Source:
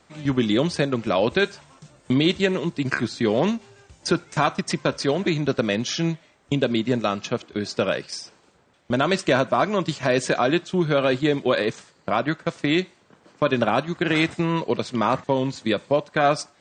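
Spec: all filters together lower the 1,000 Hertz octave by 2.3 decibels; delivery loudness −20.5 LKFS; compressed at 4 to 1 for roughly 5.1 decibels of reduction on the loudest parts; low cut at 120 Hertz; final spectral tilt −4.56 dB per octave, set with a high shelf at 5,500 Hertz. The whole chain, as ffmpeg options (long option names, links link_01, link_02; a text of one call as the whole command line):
ffmpeg -i in.wav -af "highpass=120,equalizer=frequency=1000:width_type=o:gain=-3,highshelf=frequency=5500:gain=-7,acompressor=threshold=-22dB:ratio=4,volume=7.5dB" out.wav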